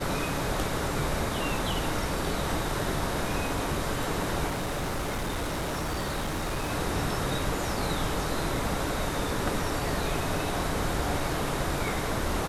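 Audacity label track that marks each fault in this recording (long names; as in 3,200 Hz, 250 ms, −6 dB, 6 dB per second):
4.470000	6.720000	clipping −27 dBFS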